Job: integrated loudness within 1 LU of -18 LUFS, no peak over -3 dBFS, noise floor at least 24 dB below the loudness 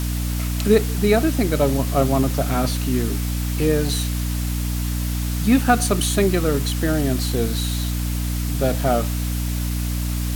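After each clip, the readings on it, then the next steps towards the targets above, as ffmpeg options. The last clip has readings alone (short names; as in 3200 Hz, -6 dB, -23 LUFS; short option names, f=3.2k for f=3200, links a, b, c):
hum 60 Hz; harmonics up to 300 Hz; hum level -21 dBFS; noise floor -24 dBFS; noise floor target -45 dBFS; loudness -21.0 LUFS; peak -3.5 dBFS; loudness target -18.0 LUFS
-> -af "bandreject=f=60:t=h:w=6,bandreject=f=120:t=h:w=6,bandreject=f=180:t=h:w=6,bandreject=f=240:t=h:w=6,bandreject=f=300:t=h:w=6"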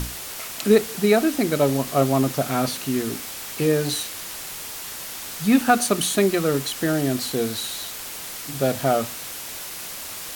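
hum none; noise floor -35 dBFS; noise floor target -47 dBFS
-> -af "afftdn=nr=12:nf=-35"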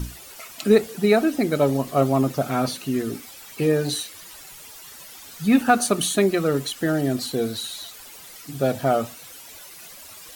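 noise floor -43 dBFS; noise floor target -46 dBFS
-> -af "afftdn=nr=6:nf=-43"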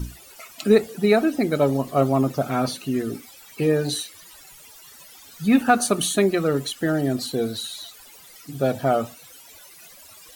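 noise floor -47 dBFS; loudness -22.0 LUFS; peak -4.5 dBFS; loudness target -18.0 LUFS
-> -af "volume=4dB,alimiter=limit=-3dB:level=0:latency=1"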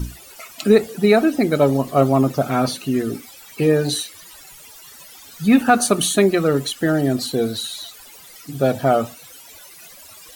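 loudness -18.5 LUFS; peak -3.0 dBFS; noise floor -43 dBFS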